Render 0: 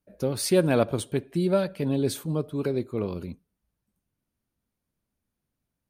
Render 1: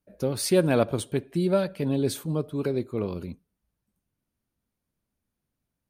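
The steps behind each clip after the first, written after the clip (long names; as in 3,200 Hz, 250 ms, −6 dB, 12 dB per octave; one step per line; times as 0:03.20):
no processing that can be heard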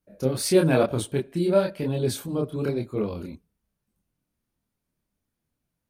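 multi-voice chorus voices 2, 1 Hz, delay 27 ms, depth 3.7 ms
level +4.5 dB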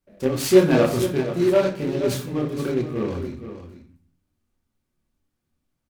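single-tap delay 472 ms −11 dB
on a send at −1.5 dB: convolution reverb RT60 0.45 s, pre-delay 3 ms
on the sum: short delay modulated by noise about 1,600 Hz, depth 0.031 ms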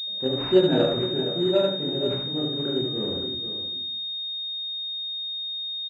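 notch comb filter 1,100 Hz
single-tap delay 73 ms −5 dB
switching amplifier with a slow clock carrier 3,700 Hz
level −4.5 dB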